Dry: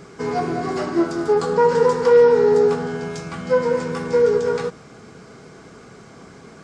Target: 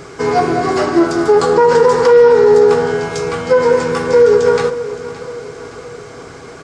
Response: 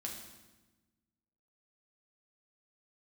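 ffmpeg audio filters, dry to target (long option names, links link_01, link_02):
-af "equalizer=frequency=200:width=3.4:gain=-14.5,aecho=1:1:568|1136|1704|2272:0.158|0.0792|0.0396|0.0198,alimiter=level_in=11dB:limit=-1dB:release=50:level=0:latency=1,volume=-1dB"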